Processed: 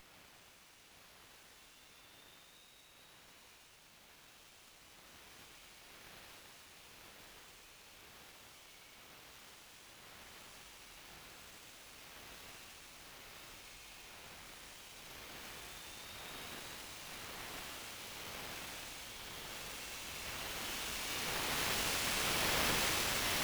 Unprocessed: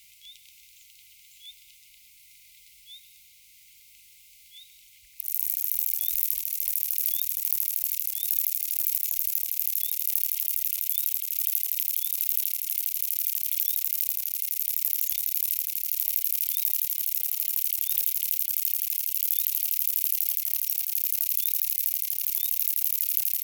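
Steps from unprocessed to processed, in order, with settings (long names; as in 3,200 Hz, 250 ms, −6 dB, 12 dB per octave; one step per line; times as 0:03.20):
source passing by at 0:10.98, 15 m/s, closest 1.4 metres
extreme stretch with random phases 13×, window 0.10 s, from 0:09.24
bass and treble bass +14 dB, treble −13 dB
windowed peak hold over 3 samples
level +9 dB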